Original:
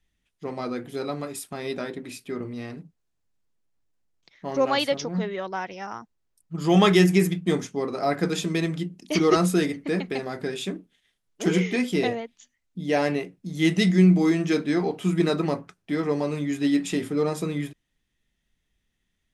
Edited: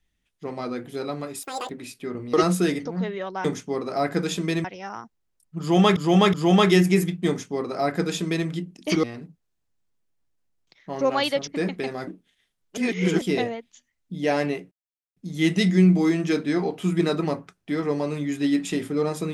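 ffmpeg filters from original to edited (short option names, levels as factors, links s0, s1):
-filter_complex "[0:a]asplit=15[s0][s1][s2][s3][s4][s5][s6][s7][s8][s9][s10][s11][s12][s13][s14];[s0]atrim=end=1.434[s15];[s1]atrim=start=1.43:end=1.95,asetpts=PTS-STARTPTS,asetrate=86877,aresample=44100[s16];[s2]atrim=start=1.946:end=2.592[s17];[s3]atrim=start=9.268:end=9.792[s18];[s4]atrim=start=5.028:end=5.622[s19];[s5]atrim=start=7.508:end=8.712[s20];[s6]atrim=start=5.618:end=6.942[s21];[s7]atrim=start=6.568:end=6.942[s22];[s8]atrim=start=6.568:end=9.272[s23];[s9]atrim=start=2.588:end=5.032[s24];[s10]atrim=start=9.788:end=10.392[s25];[s11]atrim=start=10.728:end=11.432[s26];[s12]atrim=start=11.428:end=11.872,asetpts=PTS-STARTPTS,areverse[s27];[s13]atrim=start=11.868:end=13.37,asetpts=PTS-STARTPTS,afade=t=out:st=1.498:d=0.004:c=hsin,apad=pad_dur=0.45[s28];[s14]atrim=start=13.37,asetpts=PTS-STARTPTS,afade=t=in:d=0.004:c=hsin[s29];[s15][s16]acrossfade=d=0.004:c1=hsin:c2=hsin[s30];[s30][s17]acrossfade=d=0.004:c1=hsin:c2=hsin[s31];[s31][s18]acrossfade=d=0.004:c1=hsin:c2=hsin[s32];[s32][s19]acrossfade=d=0.004:c1=hsin:c2=hsin[s33];[s33][s20]acrossfade=d=0.004:c1=hsin:c2=hsin[s34];[s34][s21]acrossfade=d=0.004:c1=hsin:c2=hsin[s35];[s35][s22]acrossfade=d=0.004:c1=hsin:c2=hsin[s36];[s36][s23]acrossfade=d=0.004:c1=hsin:c2=hsin[s37];[s37][s24]acrossfade=d=0.004:c1=hsin:c2=hsin[s38];[s38][s25]acrossfade=d=0.004:c1=hsin:c2=hsin[s39];[s39][s26]acrossfade=d=0.004:c1=hsin:c2=hsin[s40];[s40][s27]acrossfade=d=0.004:c1=hsin:c2=hsin[s41];[s28][s29]concat=n=2:v=0:a=1[s42];[s41][s42]acrossfade=d=0.004:c1=hsin:c2=hsin"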